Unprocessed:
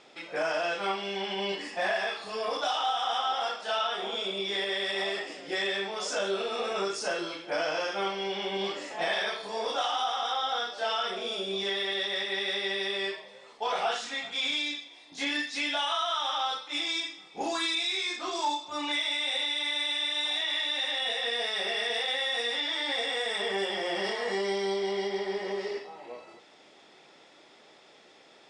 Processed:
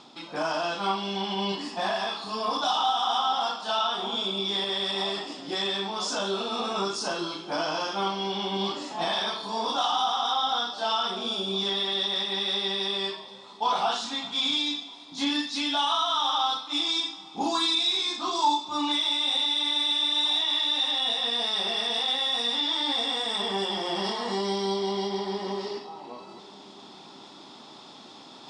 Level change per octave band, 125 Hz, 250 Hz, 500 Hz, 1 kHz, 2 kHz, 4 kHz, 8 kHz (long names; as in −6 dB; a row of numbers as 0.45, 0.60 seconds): can't be measured, +6.5 dB, −0.5 dB, +4.5 dB, −4.0 dB, +5.0 dB, +2.5 dB